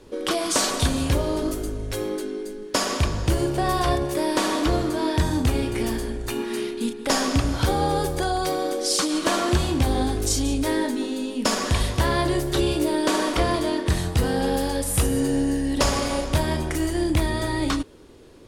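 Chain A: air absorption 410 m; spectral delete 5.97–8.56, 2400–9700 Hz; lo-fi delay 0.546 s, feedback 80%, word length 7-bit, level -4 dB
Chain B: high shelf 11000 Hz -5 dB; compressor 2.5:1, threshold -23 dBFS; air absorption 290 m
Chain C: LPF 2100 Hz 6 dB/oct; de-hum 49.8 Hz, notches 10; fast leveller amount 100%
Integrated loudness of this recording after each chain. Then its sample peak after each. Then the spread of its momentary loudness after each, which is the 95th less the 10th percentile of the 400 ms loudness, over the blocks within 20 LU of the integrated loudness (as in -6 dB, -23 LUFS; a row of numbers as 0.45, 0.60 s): -23.0, -28.0, -18.0 LUFS; -7.0, -12.5, -2.5 dBFS; 4, 4, 1 LU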